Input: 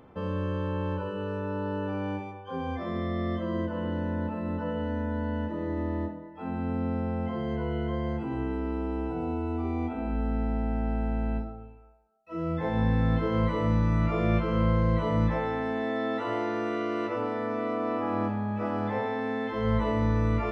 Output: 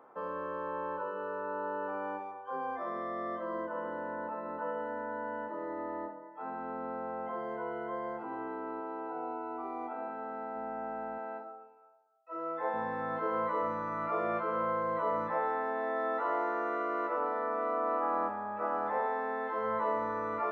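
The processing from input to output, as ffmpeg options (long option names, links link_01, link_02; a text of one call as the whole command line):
ffmpeg -i in.wav -filter_complex "[0:a]asettb=1/sr,asplit=3[link_01][link_02][link_03];[link_01]atrim=end=8.804[link_04];[link_02]atrim=start=8.8:end=10.56,asetpts=PTS-STARTPTS,afade=type=in:duration=0.004:curve=qsin,afade=type=out:start_time=1.756:duration=0.004:curve=qsin,lowshelf=frequency=160:gain=-9[link_05];[link_03]atrim=start=10.556[link_06];[link_04][link_05]acrossfade=duration=0.004:curve1=hsin:curve2=qsin[link_07];[link_07][link_06]acrossfade=duration=0.004:curve1=qsin:curve2=hsin,asettb=1/sr,asplit=3[link_08][link_09][link_10];[link_08]atrim=end=11.184[link_11];[link_09]atrim=start=11.18:end=12.74,asetpts=PTS-STARTPTS,afade=type=in:duration=0.004:curve=qsin,afade=type=out:start_time=1.556:duration=0.004:curve=qsin,highpass=290[link_12];[link_10]atrim=start=12.736[link_13];[link_11][link_12]acrossfade=duration=0.004:curve1=hsin:curve2=qsin[link_14];[link_14][link_13]acrossfade=duration=0.004:curve1=qsin:curve2=hsin,highpass=560,highshelf=frequency=2000:width_type=q:width=1.5:gain=-13" out.wav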